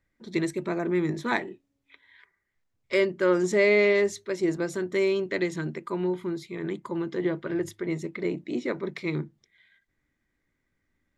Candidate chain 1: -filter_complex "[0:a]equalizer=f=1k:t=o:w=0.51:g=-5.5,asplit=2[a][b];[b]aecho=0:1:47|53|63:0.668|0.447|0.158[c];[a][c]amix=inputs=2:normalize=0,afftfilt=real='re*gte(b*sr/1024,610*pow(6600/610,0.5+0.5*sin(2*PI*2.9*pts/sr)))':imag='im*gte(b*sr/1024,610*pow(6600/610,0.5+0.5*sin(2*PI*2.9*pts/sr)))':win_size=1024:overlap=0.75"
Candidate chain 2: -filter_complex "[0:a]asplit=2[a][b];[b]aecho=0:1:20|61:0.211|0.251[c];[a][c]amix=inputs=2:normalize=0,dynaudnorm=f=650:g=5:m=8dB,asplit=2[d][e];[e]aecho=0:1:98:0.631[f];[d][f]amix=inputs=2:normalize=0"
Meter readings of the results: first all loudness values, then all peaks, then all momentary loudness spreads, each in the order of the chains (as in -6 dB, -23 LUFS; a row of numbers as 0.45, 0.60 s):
-33.5, -19.5 LUFS; -12.5, -1.0 dBFS; 20, 13 LU